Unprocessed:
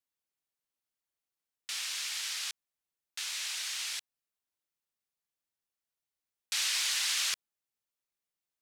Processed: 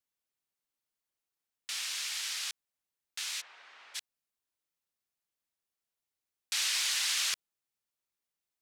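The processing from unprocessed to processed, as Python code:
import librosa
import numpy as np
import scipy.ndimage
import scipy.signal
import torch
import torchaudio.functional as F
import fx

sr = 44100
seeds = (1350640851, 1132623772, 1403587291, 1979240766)

y = fx.lowpass(x, sr, hz=1000.0, slope=12, at=(3.4, 3.94), fade=0.02)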